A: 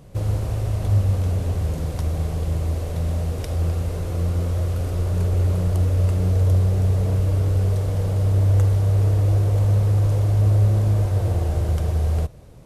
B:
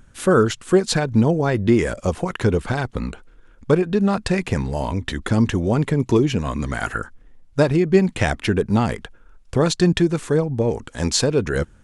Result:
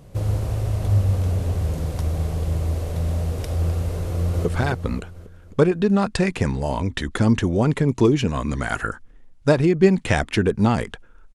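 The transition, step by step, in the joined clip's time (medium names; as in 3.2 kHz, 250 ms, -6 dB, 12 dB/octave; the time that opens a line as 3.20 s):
A
4.06–4.45 s: echo throw 270 ms, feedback 45%, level -4.5 dB
4.45 s: go over to B from 2.56 s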